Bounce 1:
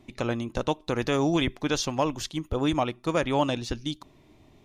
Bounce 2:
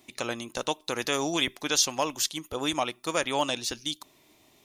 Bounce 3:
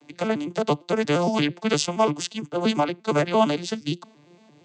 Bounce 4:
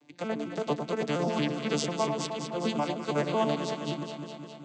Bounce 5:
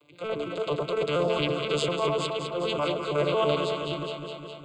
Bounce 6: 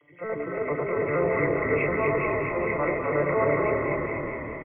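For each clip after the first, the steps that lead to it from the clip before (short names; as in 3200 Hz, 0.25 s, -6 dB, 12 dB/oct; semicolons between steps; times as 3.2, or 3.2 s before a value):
RIAA curve recording; gain -1 dB
arpeggiated vocoder minor triad, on D3, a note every 0.115 s; gain +7 dB
echo with dull and thin repeats by turns 0.103 s, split 1000 Hz, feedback 82%, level -5 dB; gain -8.5 dB
transient shaper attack -8 dB, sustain +4 dB; fixed phaser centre 1200 Hz, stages 8; gain +7.5 dB
nonlinear frequency compression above 1800 Hz 4:1; frequency-shifting echo 0.252 s, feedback 53%, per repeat -37 Hz, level -4 dB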